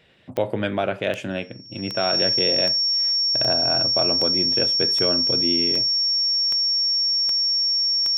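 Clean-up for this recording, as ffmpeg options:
-af "adeclick=t=4,bandreject=f=5.5k:w=30"

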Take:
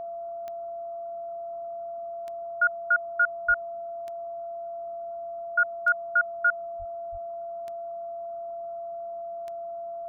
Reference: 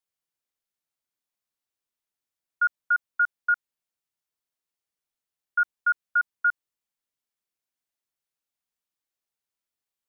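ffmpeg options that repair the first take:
-filter_complex "[0:a]adeclick=t=4,bandreject=f=680:w=30,asplit=3[a][b][c];[a]afade=t=out:st=3.47:d=0.02[d];[b]highpass=f=140:w=0.5412,highpass=f=140:w=1.3066,afade=t=in:st=3.47:d=0.02,afade=t=out:st=3.59:d=0.02[e];[c]afade=t=in:st=3.59:d=0.02[f];[d][e][f]amix=inputs=3:normalize=0,asplit=3[g][h][i];[g]afade=t=out:st=6.78:d=0.02[j];[h]highpass=f=140:w=0.5412,highpass=f=140:w=1.3066,afade=t=in:st=6.78:d=0.02,afade=t=out:st=6.9:d=0.02[k];[i]afade=t=in:st=6.9:d=0.02[l];[j][k][l]amix=inputs=3:normalize=0,asplit=3[m][n][o];[m]afade=t=out:st=7.11:d=0.02[p];[n]highpass=f=140:w=0.5412,highpass=f=140:w=1.3066,afade=t=in:st=7.11:d=0.02,afade=t=out:st=7.23:d=0.02[q];[o]afade=t=in:st=7.23:d=0.02[r];[p][q][r]amix=inputs=3:normalize=0,afwtdn=0.0022"

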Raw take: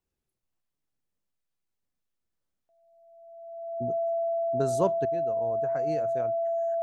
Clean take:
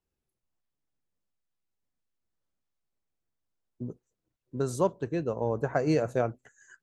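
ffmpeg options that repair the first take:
-af "bandreject=f=670:w=30,asetnsamples=n=441:p=0,asendcmd='5.05 volume volume 10dB',volume=0dB"

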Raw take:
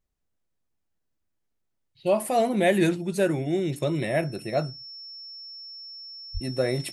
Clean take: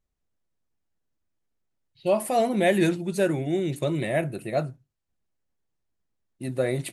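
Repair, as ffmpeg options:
-filter_complex "[0:a]bandreject=f=5.4k:w=30,asplit=3[a][b][c];[a]afade=t=out:st=6.33:d=0.02[d];[b]highpass=f=140:w=0.5412,highpass=f=140:w=1.3066,afade=t=in:st=6.33:d=0.02,afade=t=out:st=6.45:d=0.02[e];[c]afade=t=in:st=6.45:d=0.02[f];[d][e][f]amix=inputs=3:normalize=0"

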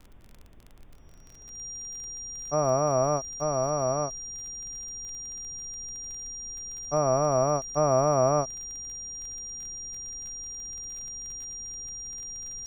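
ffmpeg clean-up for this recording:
-af "adeclick=t=4,bandreject=f=5.7k:w=30,afftdn=nr=26:nf=-47"

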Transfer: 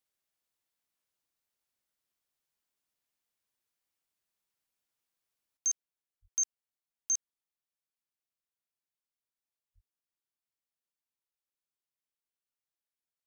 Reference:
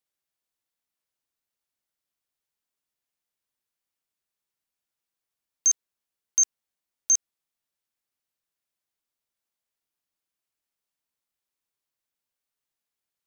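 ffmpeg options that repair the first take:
-filter_complex "[0:a]asplit=3[a][b][c];[a]afade=t=out:st=6.21:d=0.02[d];[b]highpass=f=140:w=0.5412,highpass=f=140:w=1.3066,afade=t=in:st=6.21:d=0.02,afade=t=out:st=6.33:d=0.02[e];[c]afade=t=in:st=6.33:d=0.02[f];[d][e][f]amix=inputs=3:normalize=0,asplit=3[g][h][i];[g]afade=t=out:st=9.74:d=0.02[j];[h]highpass=f=140:w=0.5412,highpass=f=140:w=1.3066,afade=t=in:st=9.74:d=0.02,afade=t=out:st=9.86:d=0.02[k];[i]afade=t=in:st=9.86:d=0.02[l];[j][k][l]amix=inputs=3:normalize=0,asetnsamples=n=441:p=0,asendcmd='5.57 volume volume 9.5dB',volume=0dB"

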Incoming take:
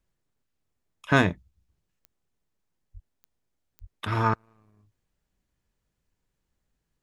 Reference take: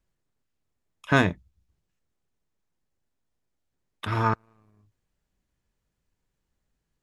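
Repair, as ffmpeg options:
-filter_complex "[0:a]adeclick=t=4,asplit=3[a][b][c];[a]afade=t=out:st=2.93:d=0.02[d];[b]highpass=f=140:w=0.5412,highpass=f=140:w=1.3066,afade=t=in:st=2.93:d=0.02,afade=t=out:st=3.05:d=0.02[e];[c]afade=t=in:st=3.05:d=0.02[f];[d][e][f]amix=inputs=3:normalize=0,asplit=3[g][h][i];[g]afade=t=out:st=3.8:d=0.02[j];[h]highpass=f=140:w=0.5412,highpass=f=140:w=1.3066,afade=t=in:st=3.8:d=0.02,afade=t=out:st=3.92:d=0.02[k];[i]afade=t=in:st=3.92:d=0.02[l];[j][k][l]amix=inputs=3:normalize=0"

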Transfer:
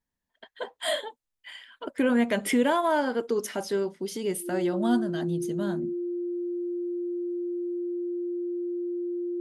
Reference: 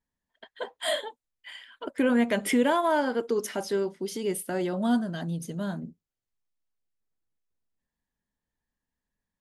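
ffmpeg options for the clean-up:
-af "bandreject=f=350:w=30"

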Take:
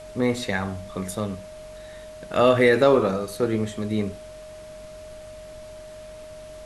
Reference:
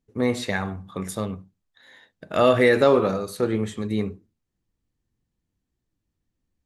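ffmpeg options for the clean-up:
-af "bandreject=f=46.6:t=h:w=4,bandreject=f=93.2:t=h:w=4,bandreject=f=139.8:t=h:w=4,bandreject=f=186.4:t=h:w=4,bandreject=f=233:t=h:w=4,bandreject=f=620:w=30,afftdn=nr=30:nf=-41"

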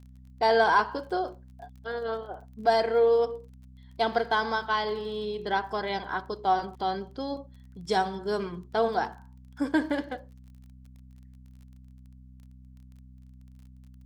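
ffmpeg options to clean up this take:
-af "adeclick=t=4,bandreject=f=63.7:t=h:w=4,bandreject=f=127.4:t=h:w=4,bandreject=f=191.1:t=h:w=4,bandreject=f=254.8:t=h:w=4"

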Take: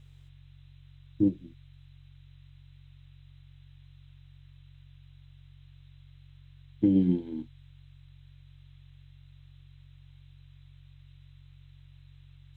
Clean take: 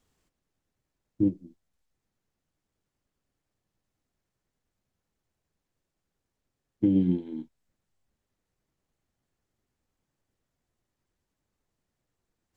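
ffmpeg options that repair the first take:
-af "bandreject=f=45.8:t=h:w=4,bandreject=f=91.6:t=h:w=4,bandreject=f=137.4:t=h:w=4,afftdn=nr=30:nf=-54"

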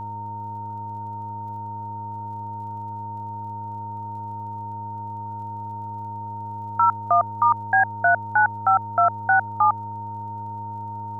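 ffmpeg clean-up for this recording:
-af "adeclick=t=4,bandreject=f=105.4:t=h:w=4,bandreject=f=210.8:t=h:w=4,bandreject=f=316.2:t=h:w=4,bandreject=f=421.6:t=h:w=4,bandreject=f=527:t=h:w=4,bandreject=f=632.4:t=h:w=4,bandreject=f=920:w=30,afwtdn=0.0035"

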